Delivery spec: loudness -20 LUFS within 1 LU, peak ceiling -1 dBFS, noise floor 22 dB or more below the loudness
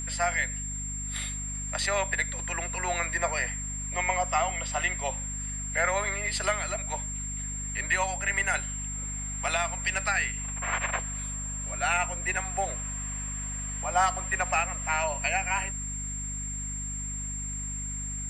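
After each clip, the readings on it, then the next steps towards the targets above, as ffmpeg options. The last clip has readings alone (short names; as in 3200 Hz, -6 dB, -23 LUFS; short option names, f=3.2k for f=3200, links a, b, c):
hum 50 Hz; harmonics up to 250 Hz; hum level -35 dBFS; steady tone 7400 Hz; tone level -34 dBFS; loudness -29.0 LUFS; peak -12.5 dBFS; loudness target -20.0 LUFS
-> -af "bandreject=f=50:t=h:w=6,bandreject=f=100:t=h:w=6,bandreject=f=150:t=h:w=6,bandreject=f=200:t=h:w=6,bandreject=f=250:t=h:w=6"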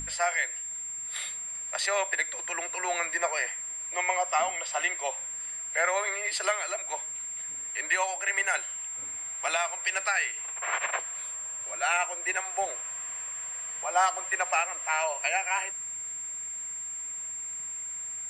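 hum none; steady tone 7400 Hz; tone level -34 dBFS
-> -af "bandreject=f=7.4k:w=30"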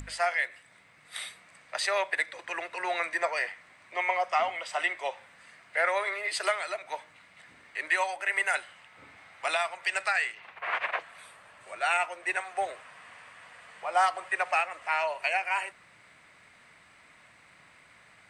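steady tone none; loudness -30.0 LUFS; peak -14.0 dBFS; loudness target -20.0 LUFS
-> -af "volume=10dB"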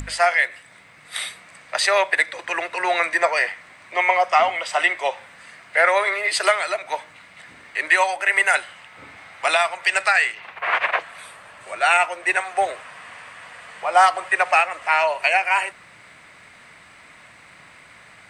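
loudness -20.0 LUFS; peak -4.0 dBFS; noise floor -48 dBFS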